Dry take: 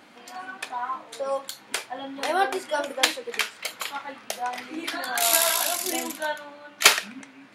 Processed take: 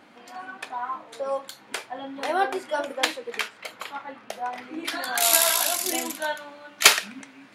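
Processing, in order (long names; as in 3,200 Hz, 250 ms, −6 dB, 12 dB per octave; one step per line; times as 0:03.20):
high-shelf EQ 3,000 Hz −6.5 dB, from 0:03.48 −12 dB, from 0:04.85 +2 dB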